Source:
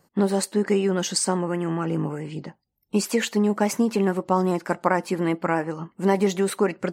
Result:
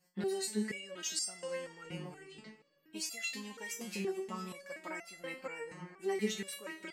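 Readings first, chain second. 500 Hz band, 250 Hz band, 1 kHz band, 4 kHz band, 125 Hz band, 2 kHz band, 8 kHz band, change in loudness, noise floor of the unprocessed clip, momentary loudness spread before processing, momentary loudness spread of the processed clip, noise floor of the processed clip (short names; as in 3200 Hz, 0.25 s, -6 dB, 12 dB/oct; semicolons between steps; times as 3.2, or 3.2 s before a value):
-16.5 dB, -19.0 dB, -21.5 dB, -9.0 dB, -21.0 dB, -11.0 dB, -10.0 dB, -15.5 dB, -74 dBFS, 6 LU, 11 LU, -73 dBFS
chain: resonant high shelf 1600 Hz +8.5 dB, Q 1.5; digital reverb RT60 3.9 s, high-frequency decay 0.7×, pre-delay 0.1 s, DRR 15.5 dB; stepped resonator 4.2 Hz 180–680 Hz; gain -2.5 dB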